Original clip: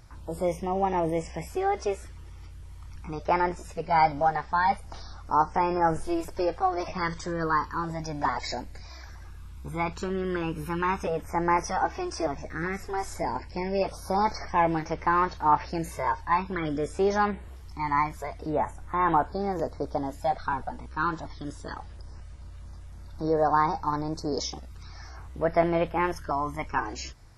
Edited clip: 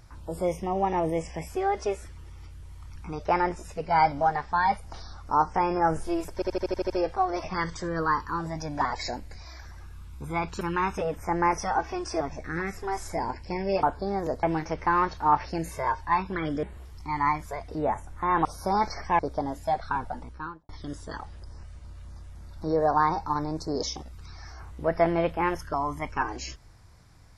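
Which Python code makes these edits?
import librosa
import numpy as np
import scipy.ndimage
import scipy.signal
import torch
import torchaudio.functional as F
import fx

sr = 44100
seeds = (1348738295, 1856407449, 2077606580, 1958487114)

y = fx.studio_fade_out(x, sr, start_s=20.75, length_s=0.51)
y = fx.edit(y, sr, fx.stutter(start_s=6.34, slice_s=0.08, count=8),
    fx.cut(start_s=10.05, length_s=0.62),
    fx.swap(start_s=13.89, length_s=0.74, other_s=19.16, other_length_s=0.6),
    fx.cut(start_s=16.83, length_s=0.51), tone=tone)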